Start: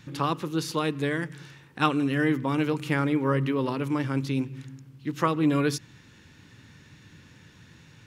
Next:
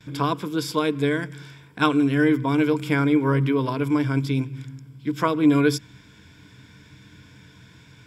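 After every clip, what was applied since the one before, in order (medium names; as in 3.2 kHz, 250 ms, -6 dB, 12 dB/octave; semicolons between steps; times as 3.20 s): gate with hold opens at -45 dBFS; rippled EQ curve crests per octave 1.7, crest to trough 10 dB; trim +2 dB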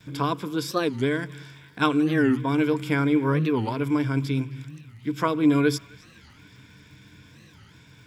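crackle 230 per s -50 dBFS; band-passed feedback delay 264 ms, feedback 84%, band-pass 2.6 kHz, level -21 dB; warped record 45 rpm, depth 250 cents; trim -2 dB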